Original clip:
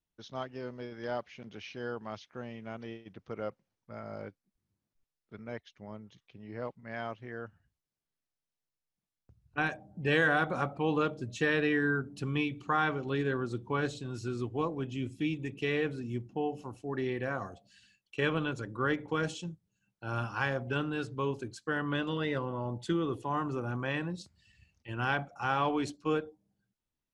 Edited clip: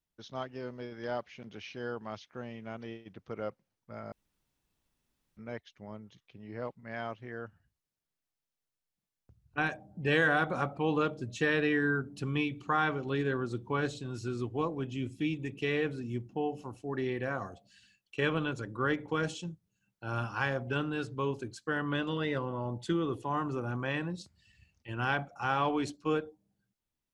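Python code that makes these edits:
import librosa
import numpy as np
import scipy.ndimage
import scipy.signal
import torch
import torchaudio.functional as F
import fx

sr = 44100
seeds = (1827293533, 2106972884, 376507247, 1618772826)

y = fx.edit(x, sr, fx.room_tone_fill(start_s=4.12, length_s=1.25), tone=tone)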